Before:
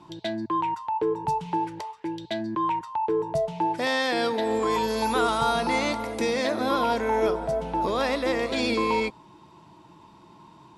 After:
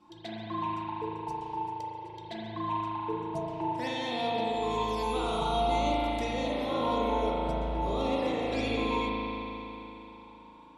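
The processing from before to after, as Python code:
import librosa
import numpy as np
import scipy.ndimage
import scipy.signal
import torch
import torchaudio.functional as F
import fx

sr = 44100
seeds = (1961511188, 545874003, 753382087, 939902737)

y = fx.fixed_phaser(x, sr, hz=570.0, stages=4, at=(0.97, 2.15))
y = fx.env_flanger(y, sr, rest_ms=4.0, full_db=-22.0)
y = fx.rev_spring(y, sr, rt60_s=3.4, pass_ms=(37,), chirp_ms=55, drr_db=-6.0)
y = F.gain(torch.from_numpy(y), -8.0).numpy()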